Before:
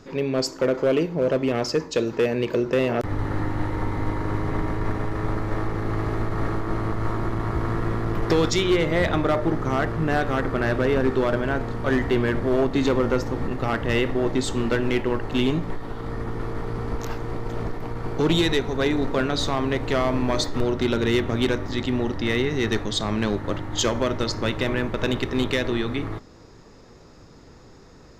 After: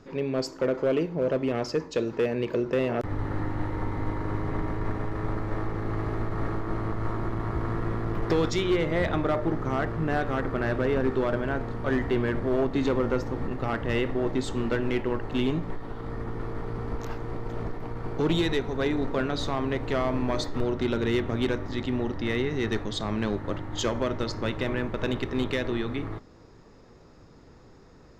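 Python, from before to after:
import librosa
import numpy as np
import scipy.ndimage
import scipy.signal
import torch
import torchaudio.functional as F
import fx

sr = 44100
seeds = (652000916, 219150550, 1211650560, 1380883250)

y = fx.high_shelf(x, sr, hz=3800.0, db=-7.0)
y = F.gain(torch.from_numpy(y), -4.0).numpy()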